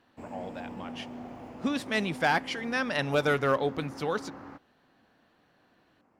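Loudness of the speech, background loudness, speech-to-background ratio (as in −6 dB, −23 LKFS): −29.5 LKFS, −43.5 LKFS, 14.0 dB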